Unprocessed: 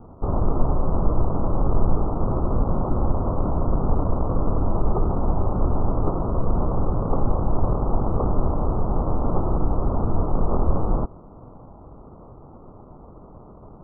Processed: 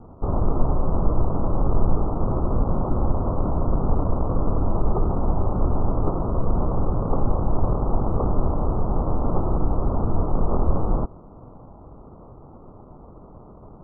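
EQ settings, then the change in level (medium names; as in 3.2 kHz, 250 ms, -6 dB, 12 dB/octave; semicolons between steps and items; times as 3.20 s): distance through air 130 m; 0.0 dB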